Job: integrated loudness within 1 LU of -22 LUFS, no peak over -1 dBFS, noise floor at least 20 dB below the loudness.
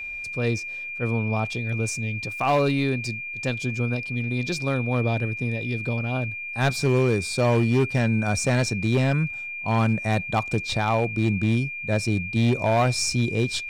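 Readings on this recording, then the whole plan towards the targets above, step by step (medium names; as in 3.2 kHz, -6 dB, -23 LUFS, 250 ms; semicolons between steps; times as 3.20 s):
clipped samples 1.7%; clipping level -15.0 dBFS; steady tone 2.4 kHz; tone level -31 dBFS; loudness -24.0 LUFS; peak level -15.0 dBFS; loudness target -22.0 LUFS
-> clip repair -15 dBFS; band-stop 2.4 kHz, Q 30; trim +2 dB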